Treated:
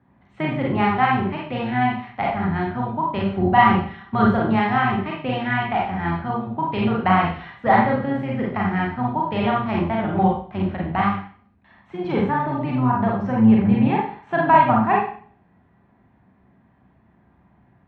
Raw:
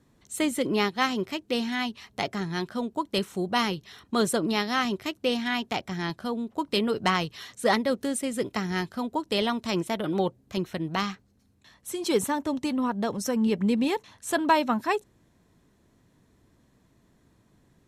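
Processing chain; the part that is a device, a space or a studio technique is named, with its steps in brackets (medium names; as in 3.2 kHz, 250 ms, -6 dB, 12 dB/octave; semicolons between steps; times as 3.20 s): high-pass 43 Hz 24 dB/octave; 3.28–4.25 s: comb 5.2 ms, depth 66%; sub-octave bass pedal (octave divider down 1 oct, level -2 dB; cabinet simulation 61–2300 Hz, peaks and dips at 87 Hz -4 dB, 320 Hz -5 dB, 480 Hz -9 dB, 790 Hz +8 dB); Schroeder reverb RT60 0.48 s, combs from 32 ms, DRR -3 dB; trim +2 dB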